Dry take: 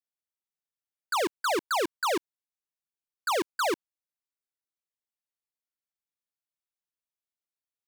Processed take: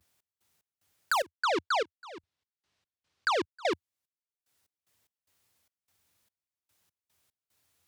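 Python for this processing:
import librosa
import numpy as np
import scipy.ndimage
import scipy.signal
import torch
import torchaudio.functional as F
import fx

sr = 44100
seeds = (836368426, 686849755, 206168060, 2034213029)

y = fx.block_float(x, sr, bits=5)
y = fx.cheby1_lowpass(y, sr, hz=4300.0, order=2, at=(1.39, 3.73), fade=0.02)
y = fx.vibrato(y, sr, rate_hz=0.39, depth_cents=32.0)
y = scipy.signal.sosfilt(scipy.signal.butter(2, 64.0, 'highpass', fs=sr, output='sos'), y)
y = fx.peak_eq(y, sr, hz=86.0, db=13.0, octaves=1.0)
y = fx.step_gate(y, sr, bpm=74, pattern='x.x.xx.xx..', floor_db=-24.0, edge_ms=4.5)
y = fx.band_squash(y, sr, depth_pct=70)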